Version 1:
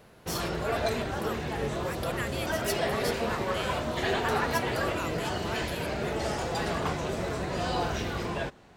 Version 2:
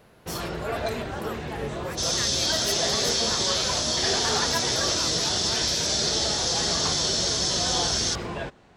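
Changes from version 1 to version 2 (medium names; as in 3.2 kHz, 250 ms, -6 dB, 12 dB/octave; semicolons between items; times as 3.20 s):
first sound: add peaking EQ 13 kHz -13 dB 0.42 oct; second sound: unmuted; reverb: on, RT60 1.8 s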